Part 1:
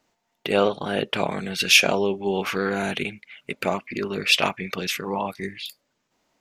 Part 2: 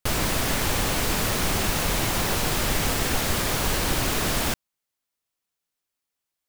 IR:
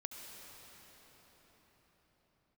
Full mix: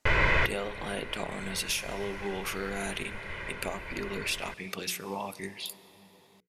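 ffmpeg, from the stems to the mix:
-filter_complex "[0:a]equalizer=f=10k:t=o:w=1.2:g=14.5,acompressor=threshold=-23dB:ratio=6,volume=-8.5dB,asplit=3[a][b][c];[b]volume=-10dB[d];[1:a]lowpass=f=2.1k:t=q:w=3.4,aecho=1:1:2:0.65,volume=-2.5dB[e];[c]apad=whole_len=286021[f];[e][f]sidechaincompress=threshold=-51dB:ratio=4:attack=7.4:release=1160[g];[2:a]atrim=start_sample=2205[h];[d][h]afir=irnorm=-1:irlink=0[i];[a][g][i]amix=inputs=3:normalize=0,bandreject=f=60:t=h:w=6,bandreject=f=120:t=h:w=6,bandreject=f=180:t=h:w=6,bandreject=f=240:t=h:w=6,bandreject=f=300:t=h:w=6,bandreject=f=360:t=h:w=6,bandreject=f=420:t=h:w=6,bandreject=f=480:t=h:w=6"

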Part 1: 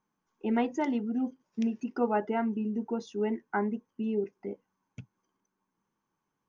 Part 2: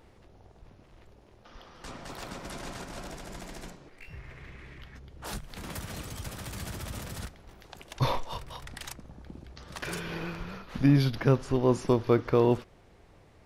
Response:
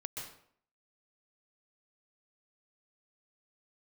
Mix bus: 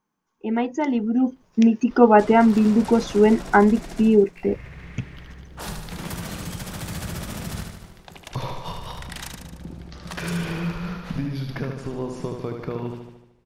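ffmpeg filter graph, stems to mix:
-filter_complex "[0:a]volume=3dB[a];[1:a]agate=range=-33dB:threshold=-45dB:ratio=3:detection=peak,acompressor=threshold=-33dB:ratio=6,equalizer=f=170:w=6.9:g=11.5,adelay=350,volume=-9dB,asplit=2[b][c];[c]volume=-5dB,aecho=0:1:75|150|225|300|375|450|525|600|675:1|0.59|0.348|0.205|0.121|0.0715|0.0422|0.0249|0.0147[d];[a][b][d]amix=inputs=3:normalize=0,dynaudnorm=f=220:g=11:m=14dB"

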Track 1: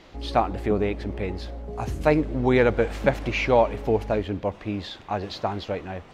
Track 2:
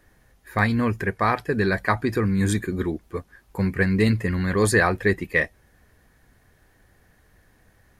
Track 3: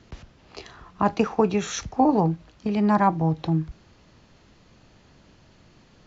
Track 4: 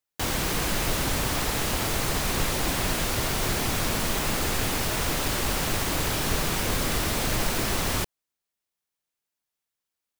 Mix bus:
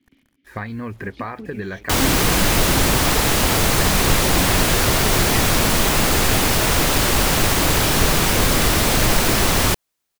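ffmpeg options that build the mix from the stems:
-filter_complex "[0:a]acompressor=threshold=-41dB:ratio=2,adelay=900,volume=0dB[a];[1:a]acrossover=split=4300[b][c];[c]acompressor=threshold=-58dB:ratio=4:attack=1:release=60[d];[b][d]amix=inputs=2:normalize=0,acrusher=bits=7:mix=0:aa=0.5,acompressor=threshold=-25dB:ratio=10,volume=-0.5dB,asplit=2[e][f];[2:a]asplit=3[g][h][i];[g]bandpass=f=270:t=q:w=8,volume=0dB[j];[h]bandpass=f=2.29k:t=q:w=8,volume=-6dB[k];[i]bandpass=f=3.01k:t=q:w=8,volume=-9dB[l];[j][k][l]amix=inputs=3:normalize=0,volume=-1.5dB[m];[3:a]acontrast=84,adelay=1700,volume=2.5dB[n];[f]apad=whole_len=310136[o];[a][o]sidechaincompress=threshold=-40dB:ratio=8:attack=26:release=302[p];[p][e][m][n]amix=inputs=4:normalize=0"

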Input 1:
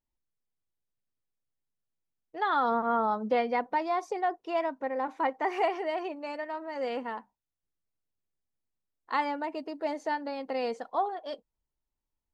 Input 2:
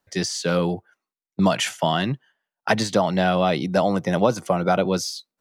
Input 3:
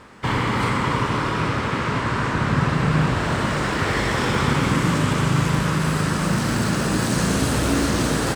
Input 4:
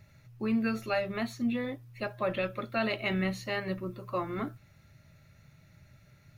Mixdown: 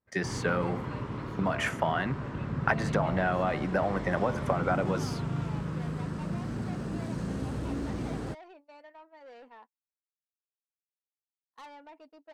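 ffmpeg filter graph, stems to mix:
-filter_complex "[0:a]highpass=200,highshelf=f=2.2k:g=-5,asoftclip=type=tanh:threshold=-32dB,adelay=2450,volume=-10.5dB[a];[1:a]highshelf=f=2.6k:t=q:w=1.5:g=-12.5,bandreject=f=74.75:t=h:w=4,bandreject=f=149.5:t=h:w=4,bandreject=f=224.25:t=h:w=4,bandreject=f=299:t=h:w=4,bandreject=f=373.75:t=h:w=4,bandreject=f=448.5:t=h:w=4,bandreject=f=523.25:t=h:w=4,bandreject=f=598:t=h:w=4,bandreject=f=672.75:t=h:w=4,bandreject=f=747.5:t=h:w=4,bandreject=f=822.25:t=h:w=4,bandreject=f=897:t=h:w=4,bandreject=f=971.75:t=h:w=4,bandreject=f=1.0465k:t=h:w=4,bandreject=f=1.12125k:t=h:w=4,bandreject=f=1.196k:t=h:w=4,bandreject=f=1.27075k:t=h:w=4,acompressor=threshold=-24dB:ratio=6,volume=2dB[b];[2:a]highshelf=f=10k:g=-9.5,acontrast=51,tiltshelf=f=640:g=10,volume=-19.5dB[c];[3:a]volume=-18dB[d];[a][b][c][d]amix=inputs=4:normalize=0,agate=range=-29dB:threshold=-51dB:ratio=16:detection=peak,lowshelf=f=440:g=-7.5"

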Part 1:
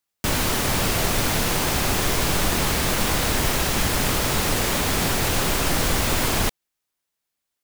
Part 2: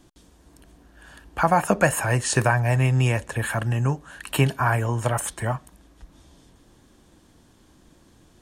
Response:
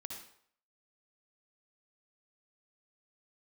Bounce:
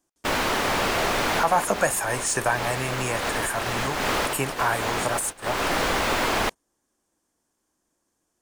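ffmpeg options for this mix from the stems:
-filter_complex "[0:a]volume=-3.5dB[a];[1:a]aexciter=amount=8.3:drive=3.8:freq=5.4k,volume=-7.5dB,asplit=2[b][c];[c]apad=whole_len=336580[d];[a][d]sidechaincompress=threshold=-30dB:ratio=6:attack=11:release=301[e];[e][b]amix=inputs=2:normalize=0,equalizer=f=120:w=1:g=-4,asplit=2[f][g];[g]highpass=f=720:p=1,volume=16dB,asoftclip=type=tanh:threshold=-3.5dB[h];[f][h]amix=inputs=2:normalize=0,lowpass=f=1.4k:p=1,volume=-6dB,agate=range=-17dB:threshold=-28dB:ratio=16:detection=peak"

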